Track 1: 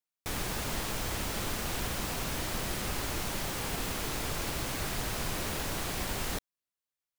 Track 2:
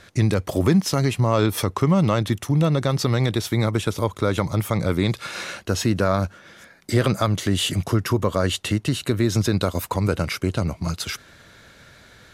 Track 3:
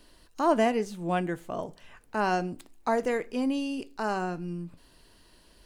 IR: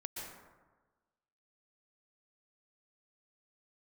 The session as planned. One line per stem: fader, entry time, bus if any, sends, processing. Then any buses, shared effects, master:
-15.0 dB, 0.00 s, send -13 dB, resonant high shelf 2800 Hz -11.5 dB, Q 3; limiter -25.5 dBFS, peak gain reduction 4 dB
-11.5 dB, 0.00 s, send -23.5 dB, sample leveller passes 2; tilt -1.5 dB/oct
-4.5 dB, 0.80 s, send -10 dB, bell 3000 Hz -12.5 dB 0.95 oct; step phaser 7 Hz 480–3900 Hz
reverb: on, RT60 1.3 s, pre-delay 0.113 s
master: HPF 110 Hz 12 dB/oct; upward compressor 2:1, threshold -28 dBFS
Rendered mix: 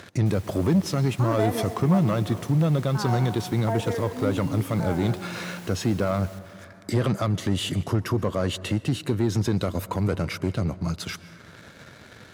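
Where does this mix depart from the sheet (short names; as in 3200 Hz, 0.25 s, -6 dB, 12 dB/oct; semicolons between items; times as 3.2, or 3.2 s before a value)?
stem 1: missing resonant high shelf 2800 Hz -11.5 dB, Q 3; reverb return +9.5 dB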